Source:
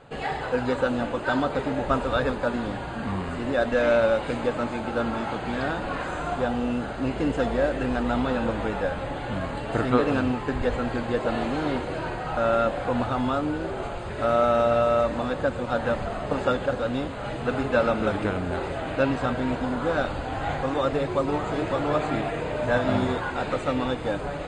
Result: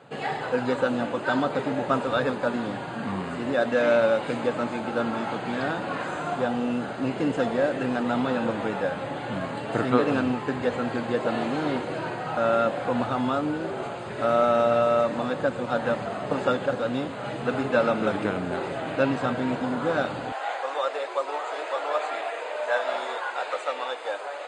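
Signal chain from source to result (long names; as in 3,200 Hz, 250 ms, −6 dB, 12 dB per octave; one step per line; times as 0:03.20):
high-pass filter 120 Hz 24 dB per octave, from 0:20.32 530 Hz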